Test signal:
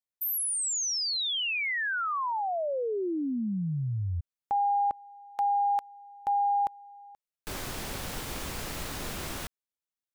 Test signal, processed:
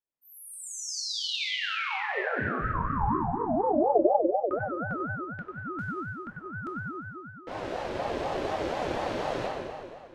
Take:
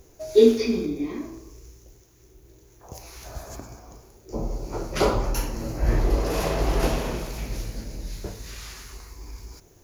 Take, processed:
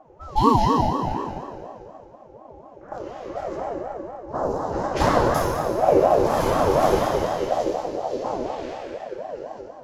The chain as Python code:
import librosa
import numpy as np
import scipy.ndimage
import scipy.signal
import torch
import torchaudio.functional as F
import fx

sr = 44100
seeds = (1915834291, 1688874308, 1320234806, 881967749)

y = fx.env_lowpass(x, sr, base_hz=1800.0, full_db=-21.5)
y = fx.peak_eq(y, sr, hz=100.0, db=9.0, octaves=2.1)
y = fx.rider(y, sr, range_db=3, speed_s=2.0)
y = fx.echo_filtered(y, sr, ms=94, feedback_pct=53, hz=1600.0, wet_db=-8.5)
y = fx.rev_fdn(y, sr, rt60_s=2.1, lf_ratio=0.9, hf_ratio=0.85, size_ms=16.0, drr_db=-1.5)
y = fx.ring_lfo(y, sr, carrier_hz=570.0, swing_pct=25, hz=4.1)
y = F.gain(torch.from_numpy(y), -2.0).numpy()